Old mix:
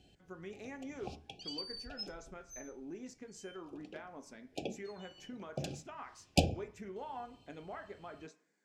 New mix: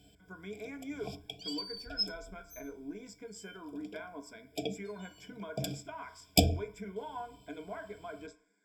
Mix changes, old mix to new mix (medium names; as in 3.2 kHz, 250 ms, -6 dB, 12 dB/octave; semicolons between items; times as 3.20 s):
background: remove distance through air 56 m; master: add rippled EQ curve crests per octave 1.7, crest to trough 17 dB